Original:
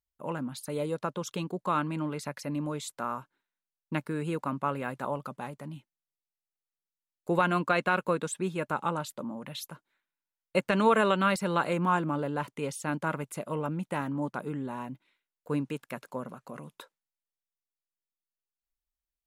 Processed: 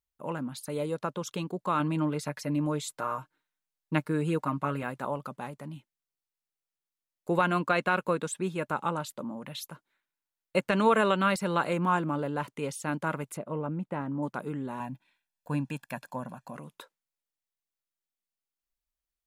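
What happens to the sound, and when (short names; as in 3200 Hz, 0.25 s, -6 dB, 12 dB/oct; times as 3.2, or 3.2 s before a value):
1.79–4.83 comb 6.5 ms, depth 66%
13.37–14.23 LPF 1000 Hz 6 dB/oct
14.8–16.56 comb 1.2 ms, depth 68%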